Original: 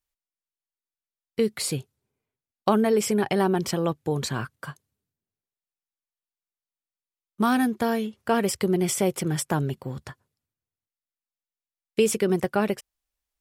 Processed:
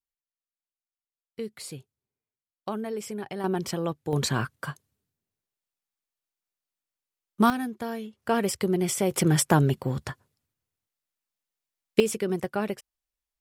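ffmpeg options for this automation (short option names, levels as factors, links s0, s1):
-af "asetnsamples=n=441:p=0,asendcmd='3.44 volume volume -4dB;4.13 volume volume 2.5dB;7.5 volume volume -8.5dB;8.22 volume volume -2dB;9.11 volume volume 5dB;12 volume volume -5dB',volume=0.266"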